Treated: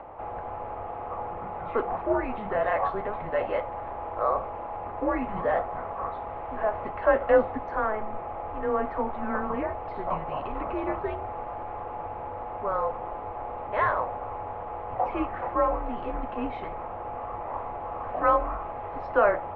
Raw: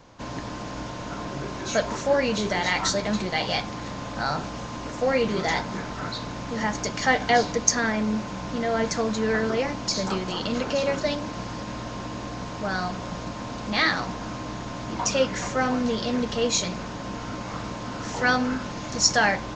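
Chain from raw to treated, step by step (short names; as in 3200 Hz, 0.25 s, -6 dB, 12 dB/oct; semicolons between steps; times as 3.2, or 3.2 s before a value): 6.26–6.87 delta modulation 32 kbps, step -34.5 dBFS; upward compressor, threshold -33 dBFS; band shelf 1000 Hz +12.5 dB 1.2 oct; mistuned SSB -210 Hz 170–2600 Hz; gain -8 dB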